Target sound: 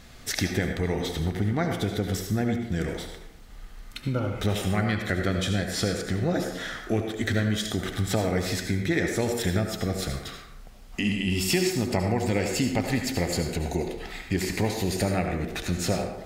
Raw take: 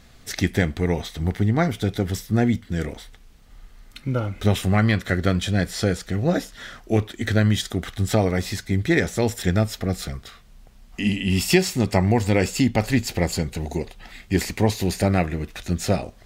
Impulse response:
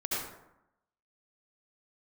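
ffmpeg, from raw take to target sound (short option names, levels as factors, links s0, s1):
-filter_complex "[0:a]acompressor=threshold=0.0398:ratio=2.5,asplit=2[s0][s1];[1:a]atrim=start_sample=2205,lowshelf=f=160:g=-9.5[s2];[s1][s2]afir=irnorm=-1:irlink=0,volume=0.473[s3];[s0][s3]amix=inputs=2:normalize=0"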